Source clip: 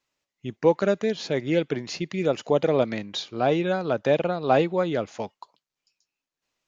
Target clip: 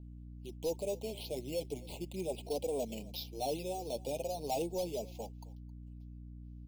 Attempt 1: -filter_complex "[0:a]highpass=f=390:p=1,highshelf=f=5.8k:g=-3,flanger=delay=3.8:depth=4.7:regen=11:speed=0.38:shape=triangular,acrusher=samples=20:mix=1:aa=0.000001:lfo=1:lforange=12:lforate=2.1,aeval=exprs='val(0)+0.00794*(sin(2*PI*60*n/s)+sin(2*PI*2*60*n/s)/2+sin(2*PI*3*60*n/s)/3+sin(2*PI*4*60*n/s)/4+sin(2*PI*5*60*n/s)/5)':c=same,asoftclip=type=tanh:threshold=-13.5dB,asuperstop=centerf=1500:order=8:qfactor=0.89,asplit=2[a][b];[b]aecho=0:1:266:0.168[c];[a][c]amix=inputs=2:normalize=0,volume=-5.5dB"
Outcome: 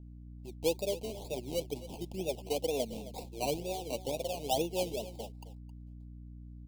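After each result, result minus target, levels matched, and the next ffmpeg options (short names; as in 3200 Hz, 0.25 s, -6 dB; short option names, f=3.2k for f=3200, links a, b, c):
soft clip: distortion -12 dB; decimation with a swept rate: distortion +10 dB; echo-to-direct +6.5 dB
-filter_complex "[0:a]highpass=f=390:p=1,highshelf=f=5.8k:g=-3,flanger=delay=3.8:depth=4.7:regen=11:speed=0.38:shape=triangular,acrusher=samples=20:mix=1:aa=0.000001:lfo=1:lforange=12:lforate=2.1,aeval=exprs='val(0)+0.00794*(sin(2*PI*60*n/s)+sin(2*PI*2*60*n/s)/2+sin(2*PI*3*60*n/s)/3+sin(2*PI*4*60*n/s)/4+sin(2*PI*5*60*n/s)/5)':c=same,asoftclip=type=tanh:threshold=-24dB,asuperstop=centerf=1500:order=8:qfactor=0.89,asplit=2[a][b];[b]aecho=0:1:266:0.168[c];[a][c]amix=inputs=2:normalize=0,volume=-5.5dB"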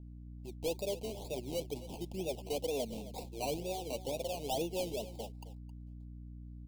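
decimation with a swept rate: distortion +10 dB; echo-to-direct +6.5 dB
-filter_complex "[0:a]highpass=f=390:p=1,highshelf=f=5.8k:g=-3,flanger=delay=3.8:depth=4.7:regen=11:speed=0.38:shape=triangular,acrusher=samples=7:mix=1:aa=0.000001:lfo=1:lforange=4.2:lforate=2.1,aeval=exprs='val(0)+0.00794*(sin(2*PI*60*n/s)+sin(2*PI*2*60*n/s)/2+sin(2*PI*3*60*n/s)/3+sin(2*PI*4*60*n/s)/4+sin(2*PI*5*60*n/s)/5)':c=same,asoftclip=type=tanh:threshold=-24dB,asuperstop=centerf=1500:order=8:qfactor=0.89,asplit=2[a][b];[b]aecho=0:1:266:0.168[c];[a][c]amix=inputs=2:normalize=0,volume=-5.5dB"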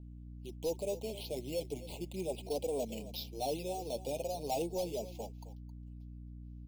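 echo-to-direct +6.5 dB
-filter_complex "[0:a]highpass=f=390:p=1,highshelf=f=5.8k:g=-3,flanger=delay=3.8:depth=4.7:regen=11:speed=0.38:shape=triangular,acrusher=samples=7:mix=1:aa=0.000001:lfo=1:lforange=4.2:lforate=2.1,aeval=exprs='val(0)+0.00794*(sin(2*PI*60*n/s)+sin(2*PI*2*60*n/s)/2+sin(2*PI*3*60*n/s)/3+sin(2*PI*4*60*n/s)/4+sin(2*PI*5*60*n/s)/5)':c=same,asoftclip=type=tanh:threshold=-24dB,asuperstop=centerf=1500:order=8:qfactor=0.89,asplit=2[a][b];[b]aecho=0:1:266:0.0794[c];[a][c]amix=inputs=2:normalize=0,volume=-5.5dB"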